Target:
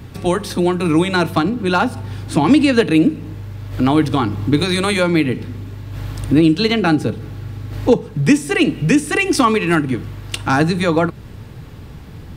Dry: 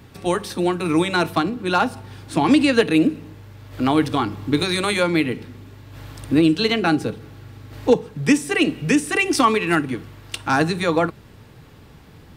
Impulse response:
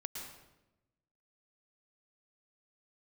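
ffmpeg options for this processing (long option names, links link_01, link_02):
-filter_complex "[0:a]lowshelf=frequency=200:gain=8.5,asplit=2[link_01][link_02];[link_02]acompressor=threshold=-23dB:ratio=6,volume=0.5dB[link_03];[link_01][link_03]amix=inputs=2:normalize=0,volume=-1dB"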